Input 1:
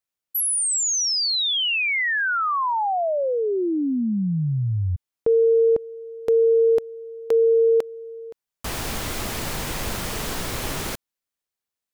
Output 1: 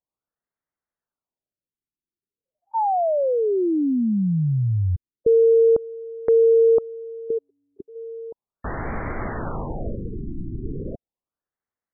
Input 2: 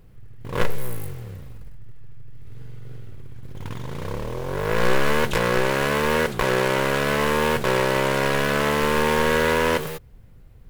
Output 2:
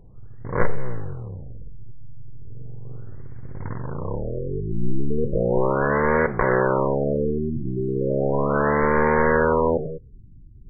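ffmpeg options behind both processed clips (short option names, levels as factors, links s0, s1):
-af "asuperstop=centerf=2700:order=4:qfactor=1.8,afftfilt=real='re*lt(b*sr/1024,370*pow(2500/370,0.5+0.5*sin(2*PI*0.36*pts/sr)))':imag='im*lt(b*sr/1024,370*pow(2500/370,0.5+0.5*sin(2*PI*0.36*pts/sr)))':win_size=1024:overlap=0.75,volume=1.26"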